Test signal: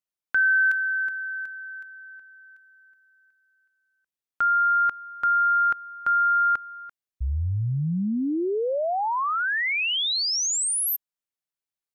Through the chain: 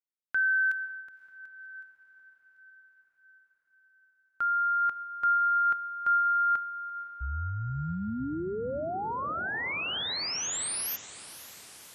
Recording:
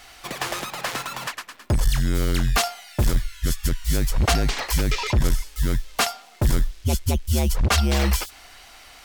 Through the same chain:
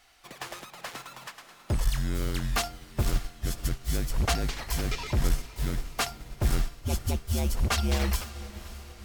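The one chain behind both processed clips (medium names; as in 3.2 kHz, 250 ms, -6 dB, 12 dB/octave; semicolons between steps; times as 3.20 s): echo that smears into a reverb 541 ms, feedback 65%, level -11 dB; upward expansion 1.5:1, over -33 dBFS; trim -5 dB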